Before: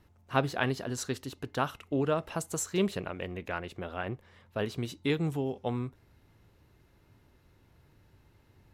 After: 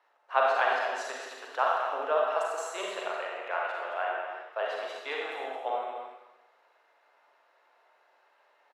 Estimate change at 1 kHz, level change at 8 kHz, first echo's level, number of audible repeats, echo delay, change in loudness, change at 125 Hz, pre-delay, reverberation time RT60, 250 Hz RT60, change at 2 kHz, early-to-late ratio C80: +8.5 dB, -7.0 dB, -7.5 dB, 1, 0.219 s, +2.0 dB, under -40 dB, 35 ms, 1.0 s, 0.95 s, +5.5 dB, 1.0 dB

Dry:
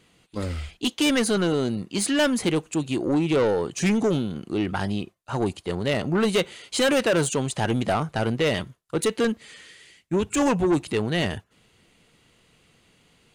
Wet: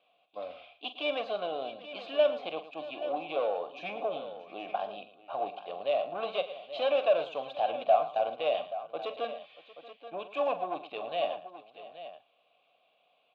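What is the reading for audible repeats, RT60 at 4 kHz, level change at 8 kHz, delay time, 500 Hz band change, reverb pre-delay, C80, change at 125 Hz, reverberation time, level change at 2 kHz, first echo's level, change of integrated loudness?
4, none, under -40 dB, 44 ms, -5.0 dB, none, none, under -30 dB, none, -12.5 dB, -12.0 dB, -8.5 dB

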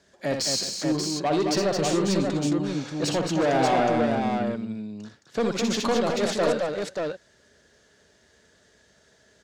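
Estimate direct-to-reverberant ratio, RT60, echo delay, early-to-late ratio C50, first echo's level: none, none, 61 ms, none, -6.5 dB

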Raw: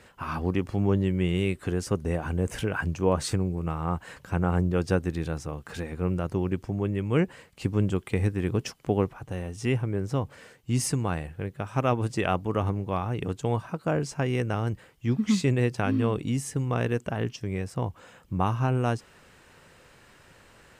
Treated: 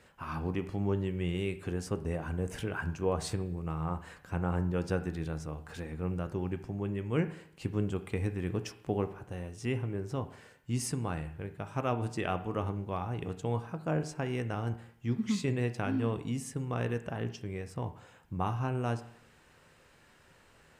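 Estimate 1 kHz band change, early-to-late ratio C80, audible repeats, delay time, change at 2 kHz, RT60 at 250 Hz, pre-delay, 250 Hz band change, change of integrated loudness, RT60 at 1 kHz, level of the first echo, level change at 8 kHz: -6.0 dB, 16.5 dB, none, none, -6.5 dB, 0.65 s, 12 ms, -6.5 dB, -6.5 dB, 0.65 s, none, -7.0 dB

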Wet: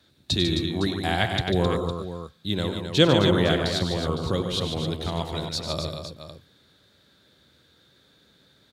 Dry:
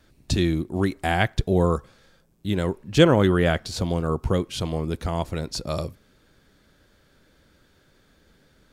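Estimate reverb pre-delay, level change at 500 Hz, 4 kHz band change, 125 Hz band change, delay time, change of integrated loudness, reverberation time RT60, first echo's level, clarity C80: none, -1.5 dB, +6.0 dB, -2.0 dB, 96 ms, -1.0 dB, none, -10.5 dB, none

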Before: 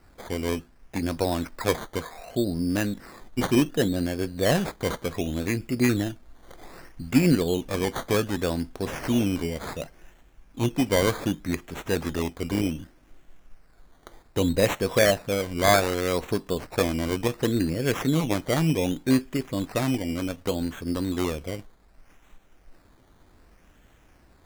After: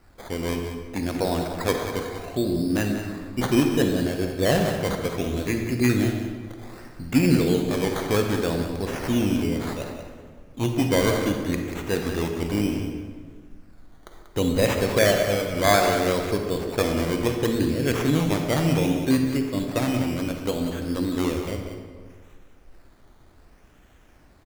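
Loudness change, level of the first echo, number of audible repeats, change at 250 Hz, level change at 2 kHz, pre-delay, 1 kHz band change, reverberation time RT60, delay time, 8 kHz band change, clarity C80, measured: +2.0 dB, -9.5 dB, 1, +2.0 dB, +1.5 dB, 38 ms, +2.5 dB, 1.7 s, 0.188 s, +1.0 dB, 4.5 dB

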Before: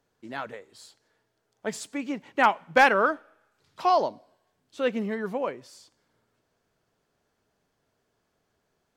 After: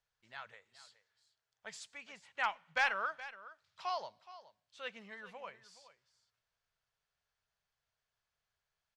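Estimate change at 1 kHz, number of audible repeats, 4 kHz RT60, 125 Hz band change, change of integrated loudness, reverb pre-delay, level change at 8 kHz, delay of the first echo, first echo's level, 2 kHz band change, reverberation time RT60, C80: -15.0 dB, 1, none, under -20 dB, -14.0 dB, none, -12.0 dB, 0.421 s, -16.0 dB, -10.5 dB, none, none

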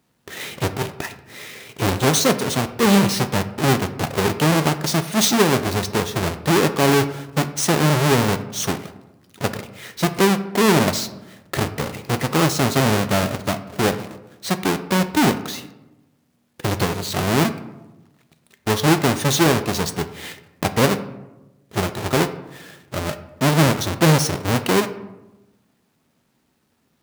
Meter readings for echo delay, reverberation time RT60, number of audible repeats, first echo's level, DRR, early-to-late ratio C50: none, 1.0 s, none, none, 10.0 dB, 13.0 dB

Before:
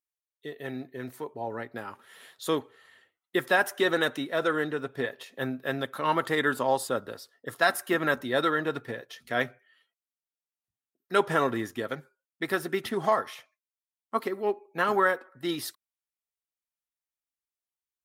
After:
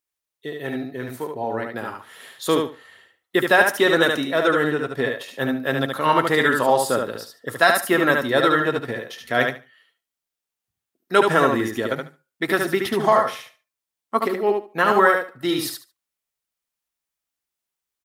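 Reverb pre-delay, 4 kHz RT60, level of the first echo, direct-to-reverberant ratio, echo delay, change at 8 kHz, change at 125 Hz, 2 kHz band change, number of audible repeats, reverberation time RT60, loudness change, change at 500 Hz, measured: none, none, -4.5 dB, none, 73 ms, +8.5 dB, +8.0 dB, +8.5 dB, 3, none, +8.0 dB, +8.5 dB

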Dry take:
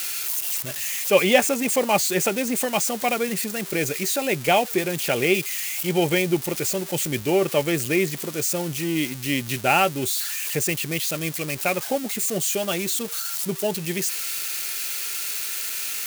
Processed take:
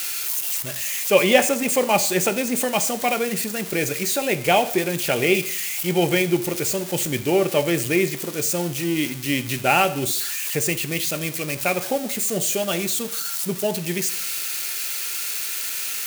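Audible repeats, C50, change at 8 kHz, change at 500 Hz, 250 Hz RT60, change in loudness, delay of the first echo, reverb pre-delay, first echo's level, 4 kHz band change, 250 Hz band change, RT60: none, 14.5 dB, +1.5 dB, +1.5 dB, 0.65 s, +1.5 dB, none, 8 ms, none, +1.5 dB, +1.5 dB, 0.65 s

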